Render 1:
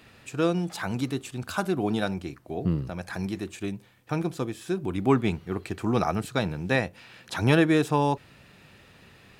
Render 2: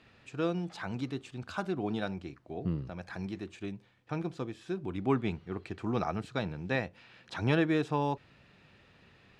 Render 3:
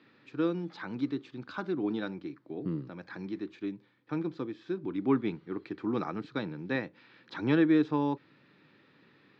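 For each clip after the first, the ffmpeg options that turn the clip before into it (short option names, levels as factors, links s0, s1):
-af "lowpass=5000,volume=0.447"
-af "highpass=f=140:w=0.5412,highpass=f=140:w=1.3066,equalizer=f=190:t=q:w=4:g=-3,equalizer=f=300:t=q:w=4:g=8,equalizer=f=690:t=q:w=4:g=-10,equalizer=f=2800:t=q:w=4:g=-7,lowpass=f=4600:w=0.5412,lowpass=f=4600:w=1.3066"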